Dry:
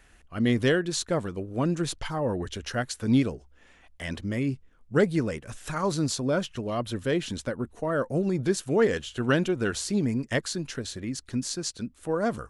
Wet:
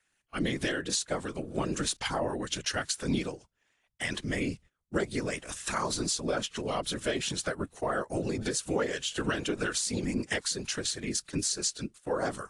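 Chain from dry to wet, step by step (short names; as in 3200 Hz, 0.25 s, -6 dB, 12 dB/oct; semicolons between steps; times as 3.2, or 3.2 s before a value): gate -44 dBFS, range -20 dB; tilt +2.5 dB/oct; compressor 12:1, threshold -29 dBFS, peak gain reduction 11 dB; whisperiser; gain +2.5 dB; AAC 64 kbps 22050 Hz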